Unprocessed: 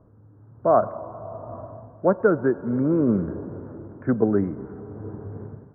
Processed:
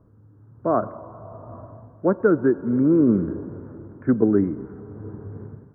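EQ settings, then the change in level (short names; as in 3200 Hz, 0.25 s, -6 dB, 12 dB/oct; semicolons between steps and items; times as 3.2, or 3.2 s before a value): dynamic EQ 310 Hz, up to +6 dB, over -35 dBFS, Q 1.7; bell 680 Hz -6 dB 0.96 oct; 0.0 dB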